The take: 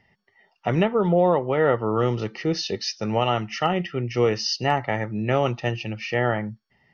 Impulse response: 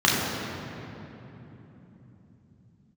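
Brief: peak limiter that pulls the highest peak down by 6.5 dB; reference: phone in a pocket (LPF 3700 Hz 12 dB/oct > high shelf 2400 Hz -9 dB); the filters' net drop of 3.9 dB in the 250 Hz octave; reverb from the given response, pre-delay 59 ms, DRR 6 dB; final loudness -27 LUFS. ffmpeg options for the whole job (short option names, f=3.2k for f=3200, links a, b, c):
-filter_complex "[0:a]equalizer=f=250:t=o:g=-6,alimiter=limit=-15dB:level=0:latency=1,asplit=2[a][b];[1:a]atrim=start_sample=2205,adelay=59[c];[b][c]afir=irnorm=-1:irlink=0,volume=-26dB[d];[a][d]amix=inputs=2:normalize=0,lowpass=3.7k,highshelf=f=2.4k:g=-9,volume=-0.5dB"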